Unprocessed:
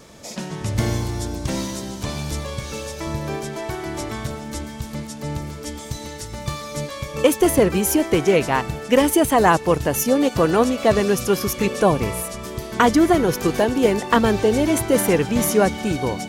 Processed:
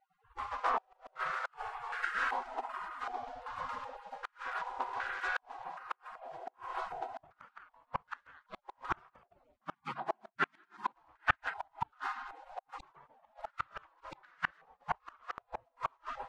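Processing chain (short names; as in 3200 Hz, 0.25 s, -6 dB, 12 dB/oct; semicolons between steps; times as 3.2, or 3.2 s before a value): 9.59–10.96 HPF 400 Hz 24 dB/oct; spectral gate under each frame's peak -30 dB weak; flipped gate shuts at -27 dBFS, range -37 dB; pops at 15.38, -21 dBFS; stepped low-pass 2.6 Hz 680–1500 Hz; gain +12 dB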